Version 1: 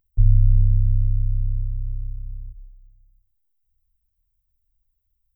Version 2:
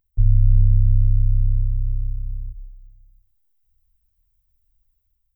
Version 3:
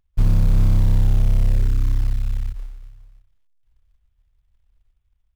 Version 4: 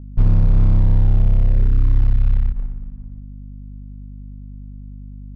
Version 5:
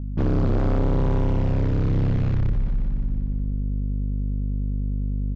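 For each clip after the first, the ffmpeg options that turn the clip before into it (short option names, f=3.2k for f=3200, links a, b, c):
-af "dynaudnorm=f=130:g=7:m=6dB,volume=-1dB"
-af "aresample=8000,asoftclip=type=tanh:threshold=-15.5dB,aresample=44100,aeval=exprs='0.168*(cos(1*acos(clip(val(0)/0.168,-1,1)))-cos(1*PI/2))+0.00841*(cos(8*acos(clip(val(0)/0.168,-1,1)))-cos(8*PI/2))':c=same,acrusher=bits=7:mode=log:mix=0:aa=0.000001,volume=5.5dB"
-af "alimiter=limit=-14.5dB:level=0:latency=1:release=146,aeval=exprs='val(0)+0.01*(sin(2*PI*50*n/s)+sin(2*PI*2*50*n/s)/2+sin(2*PI*3*50*n/s)/3+sin(2*PI*4*50*n/s)/4+sin(2*PI*5*50*n/s)/5)':c=same,adynamicsmooth=sensitivity=5.5:basefreq=900,volume=7dB"
-af "aresample=16000,aeval=exprs='0.158*(abs(mod(val(0)/0.158+3,4)-2)-1)':c=same,aresample=44100,aecho=1:1:180|360|540|720|900|1080|1260:0.376|0.214|0.122|0.0696|0.0397|0.0226|0.0129,asoftclip=type=tanh:threshold=-22dB,volume=5.5dB"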